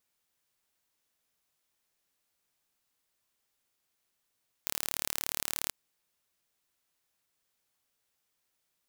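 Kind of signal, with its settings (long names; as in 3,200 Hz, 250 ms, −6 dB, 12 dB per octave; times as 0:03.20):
impulse train 37 per second, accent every 0, −5 dBFS 1.03 s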